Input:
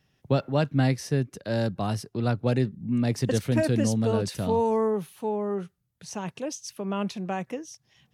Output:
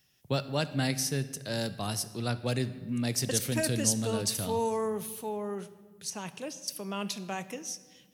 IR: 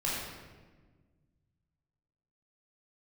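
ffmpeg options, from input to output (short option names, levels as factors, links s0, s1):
-filter_complex "[0:a]crystalizer=i=6:c=0,asettb=1/sr,asplit=3[s0][s1][s2];[s0]atrim=end=6.104[s3];[s1]atrim=start=6.1:end=6.68,asetpts=PTS-STARTPTS,afade=t=in:d=0.004:c=qsin,afade=t=out:st=0.576:d=0.004:c=qsin,acrossover=split=2800[s4][s5];[s5]acompressor=threshold=0.0158:ratio=4:attack=1:release=60[s6];[s4][s6]amix=inputs=2:normalize=0[s7];[s2]atrim=start=6.676[s8];[s3][s7]acrossfade=d=0.004:c1=hsin:c2=qsin[s9];[s9][s8]acrossfade=d=0.004:c1=qsin:c2=hsin,asplit=2[s10][s11];[1:a]atrim=start_sample=2205,adelay=29[s12];[s11][s12]afir=irnorm=-1:irlink=0,volume=0.0944[s13];[s10][s13]amix=inputs=2:normalize=0,volume=0.422"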